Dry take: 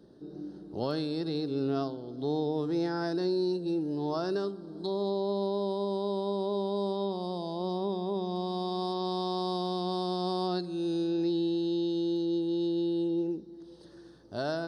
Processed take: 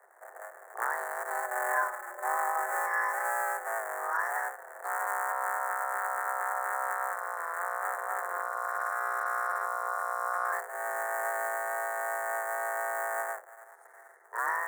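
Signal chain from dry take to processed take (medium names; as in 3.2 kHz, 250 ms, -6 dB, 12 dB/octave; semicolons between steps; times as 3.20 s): cycle switcher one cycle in 3, muted; 1.30–3.67 s: comb 4.3 ms, depth 75%; frequency shift +340 Hz; FFT filter 150 Hz 0 dB, 580 Hz -8 dB, 1.8 kHz +13 dB, 2.6 kHz -20 dB, 4.7 kHz -30 dB, 7.5 kHz +8 dB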